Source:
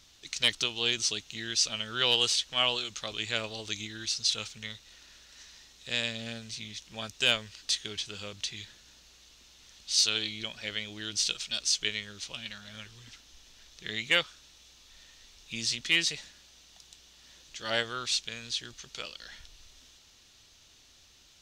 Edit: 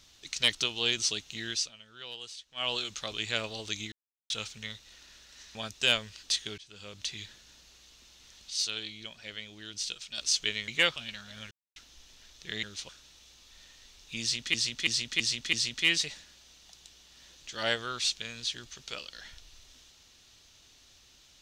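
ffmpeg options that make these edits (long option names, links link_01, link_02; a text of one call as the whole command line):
ffmpeg -i in.wav -filter_complex "[0:a]asplit=19[link_01][link_02][link_03][link_04][link_05][link_06][link_07][link_08][link_09][link_10][link_11][link_12][link_13][link_14][link_15][link_16][link_17][link_18][link_19];[link_01]atrim=end=1.72,asetpts=PTS-STARTPTS,afade=type=out:start_time=1.49:duration=0.23:silence=0.133352[link_20];[link_02]atrim=start=1.72:end=2.54,asetpts=PTS-STARTPTS,volume=-17.5dB[link_21];[link_03]atrim=start=2.54:end=3.92,asetpts=PTS-STARTPTS,afade=type=in:duration=0.23:silence=0.133352,afade=type=out:start_time=1.376:duration=0.004:curve=hsin[link_22];[link_04]atrim=start=3.92:end=4.3,asetpts=PTS-STARTPTS,volume=0[link_23];[link_05]atrim=start=4.3:end=5.552,asetpts=PTS-STARTPTS,afade=type=in:duration=0.004:curve=hsin[link_24];[link_06]atrim=start=6.938:end=7.97,asetpts=PTS-STARTPTS,afade=type=out:start_time=1.028:duration=0.004:curve=hsin:silence=0.0794328[link_25];[link_07]atrim=start=7.97:end=9.892,asetpts=PTS-STARTPTS,afade=type=in:duration=0.54:silence=0.0794328[link_26];[link_08]atrim=start=9.888:end=11.572,asetpts=PTS-STARTPTS,volume=-6.5dB[link_27];[link_09]atrim=start=11.568:end=12.072[link_28];[link_10]atrim=start=13.998:end=14.282[link_29];[link_11]atrim=start=12.328:end=12.88,asetpts=PTS-STARTPTS,afade=type=out:start_time=0.548:duration=0.004:curve=hsin[link_30];[link_12]atrim=start=12.88:end=13.13,asetpts=PTS-STARTPTS,volume=0[link_31];[link_13]atrim=start=13.13:end=14.002,asetpts=PTS-STARTPTS,afade=type=in:duration=0.004:curve=hsin[link_32];[link_14]atrim=start=12.068:end=12.332[link_33];[link_15]atrim=start=14.278:end=15.932[link_34];[link_16]atrim=start=15.598:end=15.932[link_35];[link_17]atrim=start=15.598:end=15.932[link_36];[link_18]atrim=start=15.598:end=15.932[link_37];[link_19]atrim=start=15.598[link_38];[link_20][link_21][link_22][link_23][link_24]concat=n=5:v=0:a=1[link_39];[link_25][link_26]concat=n=2:v=0:a=1[link_40];[link_39][link_40]acrossfade=duration=0.004:curve1=hsin:curve2=hsin[link_41];[link_41][link_27]acrossfade=duration=0.004:curve1=hsin:curve2=hsin[link_42];[link_42][link_28]acrossfade=duration=0.004:curve1=hsin:curve2=hsin[link_43];[link_43][link_29]acrossfade=duration=0.004:curve1=hsin:curve2=hsin[link_44];[link_30][link_31][link_32]concat=n=3:v=0:a=1[link_45];[link_44][link_45]acrossfade=duration=0.004:curve1=hsin:curve2=hsin[link_46];[link_46][link_33]acrossfade=duration=0.004:curve1=hsin:curve2=hsin[link_47];[link_47][link_34]acrossfade=duration=0.004:curve1=hsin:curve2=hsin[link_48];[link_48][link_35]acrossfade=duration=0.004:curve1=hsin:curve2=hsin[link_49];[link_49][link_36]acrossfade=duration=0.004:curve1=hsin:curve2=hsin[link_50];[link_50][link_37]acrossfade=duration=0.004:curve1=hsin:curve2=hsin[link_51];[link_51][link_38]acrossfade=duration=0.004:curve1=hsin:curve2=hsin" out.wav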